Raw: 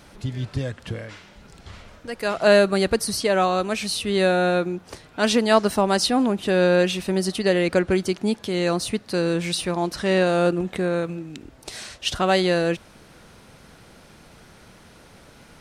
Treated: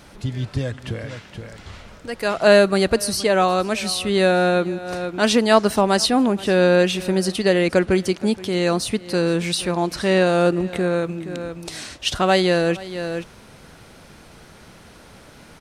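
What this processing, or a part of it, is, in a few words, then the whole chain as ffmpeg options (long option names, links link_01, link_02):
ducked delay: -filter_complex "[0:a]asplit=3[link_01][link_02][link_03];[link_02]adelay=472,volume=-7dB[link_04];[link_03]apad=whole_len=708963[link_05];[link_04][link_05]sidechaincompress=threshold=-35dB:ratio=10:attack=32:release=298[link_06];[link_01][link_06]amix=inputs=2:normalize=0,volume=2.5dB"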